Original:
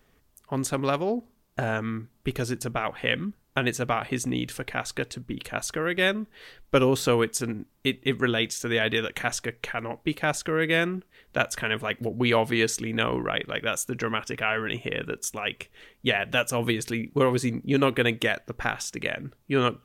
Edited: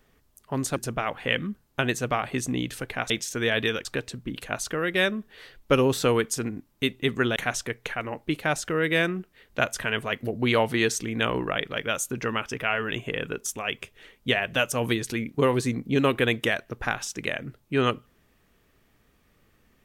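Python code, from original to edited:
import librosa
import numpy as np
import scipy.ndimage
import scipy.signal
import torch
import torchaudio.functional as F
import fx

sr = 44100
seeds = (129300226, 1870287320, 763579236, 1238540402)

y = fx.edit(x, sr, fx.cut(start_s=0.76, length_s=1.78),
    fx.move(start_s=8.39, length_s=0.75, to_s=4.88), tone=tone)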